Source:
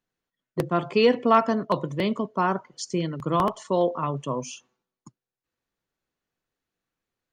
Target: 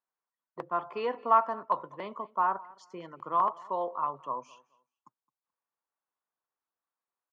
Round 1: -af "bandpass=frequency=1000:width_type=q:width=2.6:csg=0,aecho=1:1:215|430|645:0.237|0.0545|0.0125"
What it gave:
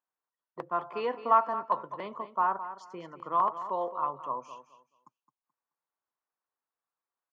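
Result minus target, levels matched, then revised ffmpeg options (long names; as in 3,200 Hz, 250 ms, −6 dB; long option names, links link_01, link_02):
echo-to-direct +10.5 dB
-af "bandpass=frequency=1000:width_type=q:width=2.6:csg=0,aecho=1:1:215|430:0.0708|0.0163"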